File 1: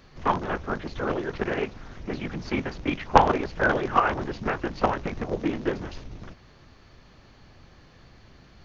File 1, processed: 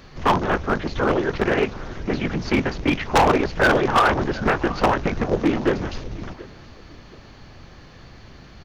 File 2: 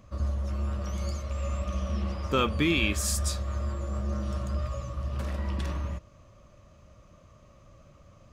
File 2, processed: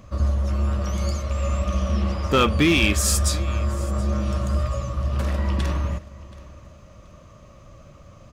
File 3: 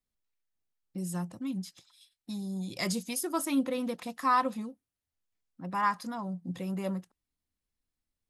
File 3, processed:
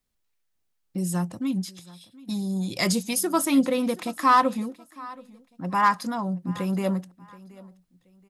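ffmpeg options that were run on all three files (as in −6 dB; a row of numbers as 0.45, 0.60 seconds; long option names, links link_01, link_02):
-af "aecho=1:1:727|1454:0.0891|0.0267,volume=19.5dB,asoftclip=hard,volume=-19.5dB,volume=8dB"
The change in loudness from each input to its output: +5.5, +7.5, +8.0 LU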